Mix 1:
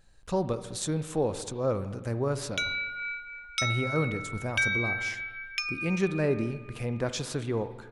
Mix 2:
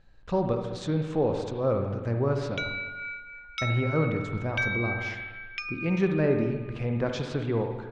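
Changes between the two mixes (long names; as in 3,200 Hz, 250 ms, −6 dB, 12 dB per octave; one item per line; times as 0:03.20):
speech: send +9.5 dB
master: add high-frequency loss of the air 190 metres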